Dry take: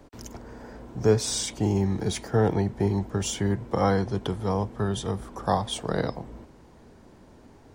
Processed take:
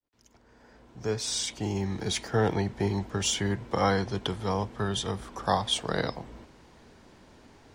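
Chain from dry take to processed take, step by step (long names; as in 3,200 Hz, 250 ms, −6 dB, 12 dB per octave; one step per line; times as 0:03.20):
fade in at the beginning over 2.41 s
parametric band 3,300 Hz +9.5 dB 2.9 octaves
level −4 dB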